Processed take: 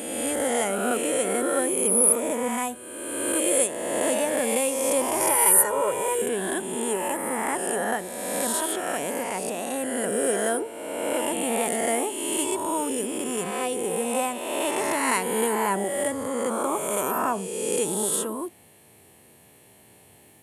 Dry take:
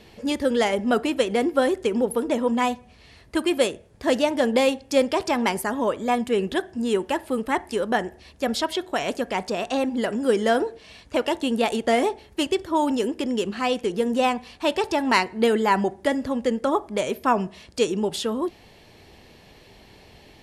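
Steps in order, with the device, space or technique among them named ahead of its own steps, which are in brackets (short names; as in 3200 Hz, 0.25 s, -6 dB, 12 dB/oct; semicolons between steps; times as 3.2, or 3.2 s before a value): spectral swells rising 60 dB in 1.81 s; 5.2–6.22 comb 2.1 ms, depth 95%; budget condenser microphone (HPF 90 Hz 24 dB/oct; resonant high shelf 6900 Hz +13 dB, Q 3); gain -8 dB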